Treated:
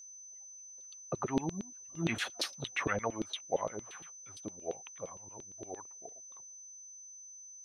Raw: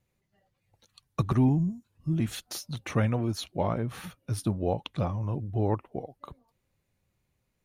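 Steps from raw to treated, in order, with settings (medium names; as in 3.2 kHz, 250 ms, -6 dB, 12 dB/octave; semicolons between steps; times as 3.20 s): Doppler pass-by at 2.24 s, 19 m/s, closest 4.8 m; LFO band-pass saw down 8.7 Hz 370–3900 Hz; whistle 6.1 kHz -64 dBFS; trim +15.5 dB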